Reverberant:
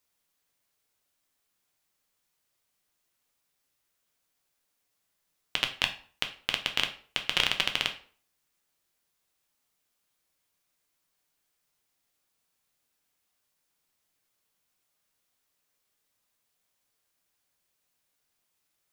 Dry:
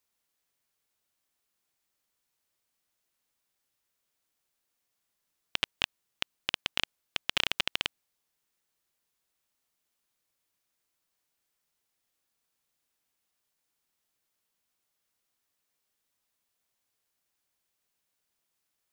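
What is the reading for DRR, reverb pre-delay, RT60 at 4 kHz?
4.5 dB, 6 ms, 0.35 s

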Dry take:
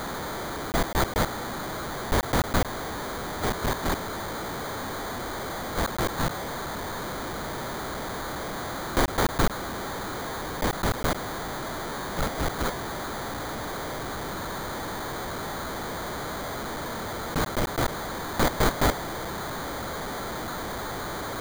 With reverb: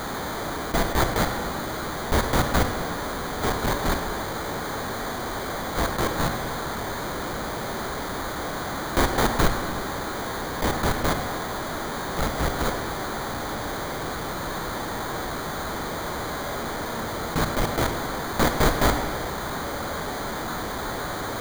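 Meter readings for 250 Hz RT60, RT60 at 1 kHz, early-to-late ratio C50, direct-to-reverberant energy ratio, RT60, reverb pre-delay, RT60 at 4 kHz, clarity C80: 1.7 s, 1.8 s, 6.5 dB, 4.5 dB, 1.7 s, 8 ms, 1.2 s, 8.0 dB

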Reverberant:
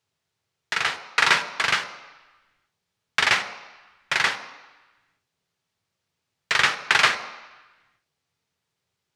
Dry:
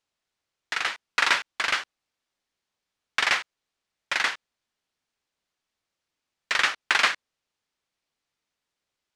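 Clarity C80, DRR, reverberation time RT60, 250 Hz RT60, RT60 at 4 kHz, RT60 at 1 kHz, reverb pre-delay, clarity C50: 13.0 dB, 7.5 dB, 1.1 s, 0.85 s, 1.1 s, 1.2 s, 3 ms, 11.5 dB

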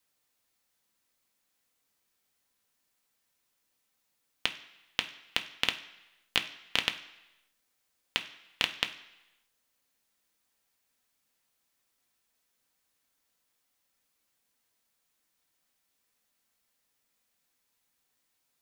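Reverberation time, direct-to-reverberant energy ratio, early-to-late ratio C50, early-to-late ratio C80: 1.0 s, 5.0 dB, 13.0 dB, 15.5 dB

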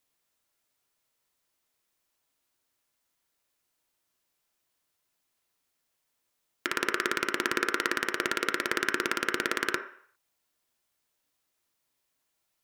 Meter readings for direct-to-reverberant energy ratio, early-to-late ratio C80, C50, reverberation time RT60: 5.0 dB, 13.0 dB, 9.5 dB, 0.60 s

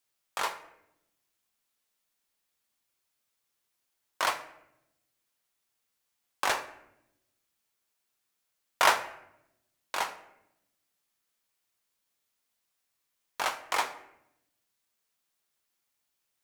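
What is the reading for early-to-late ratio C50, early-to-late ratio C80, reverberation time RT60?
12.0 dB, 15.0 dB, 0.80 s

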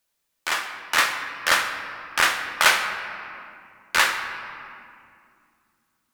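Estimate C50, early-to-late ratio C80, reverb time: 7.0 dB, 8.0 dB, 2.4 s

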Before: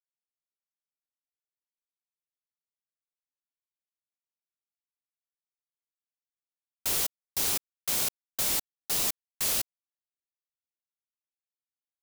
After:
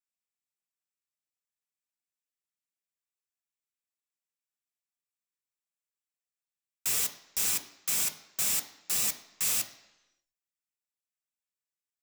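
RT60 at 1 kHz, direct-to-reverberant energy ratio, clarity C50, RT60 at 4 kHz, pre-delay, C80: 1.0 s, 4.5 dB, 12.5 dB, 0.95 s, 3 ms, 15.0 dB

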